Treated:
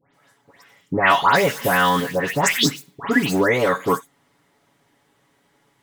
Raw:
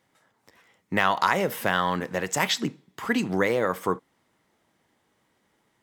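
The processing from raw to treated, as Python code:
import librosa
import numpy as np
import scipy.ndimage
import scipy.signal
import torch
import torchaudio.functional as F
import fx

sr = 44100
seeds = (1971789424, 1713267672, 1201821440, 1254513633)

y = x + 0.6 * np.pad(x, (int(7.1 * sr / 1000.0), 0))[:len(x)]
y = fx.quant_float(y, sr, bits=2, at=(1.16, 3.35))
y = fx.dispersion(y, sr, late='highs', ms=141.0, hz=2300.0)
y = y * 10.0 ** (5.5 / 20.0)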